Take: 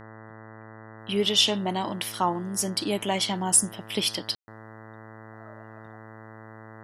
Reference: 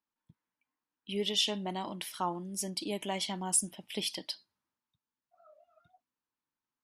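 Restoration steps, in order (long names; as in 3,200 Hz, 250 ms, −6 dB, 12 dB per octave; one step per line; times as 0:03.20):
hum removal 110 Hz, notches 18
ambience match 0:04.35–0:04.48
level correction −8.5 dB, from 0:00.99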